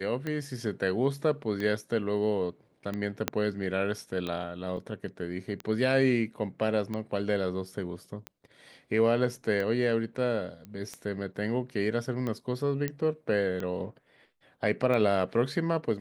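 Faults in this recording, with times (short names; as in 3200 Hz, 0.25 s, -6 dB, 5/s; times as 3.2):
tick 45 rpm -21 dBFS
3.28 pop -10 dBFS
4.77 gap 3.4 ms
10.65 pop -30 dBFS
12.88 pop -17 dBFS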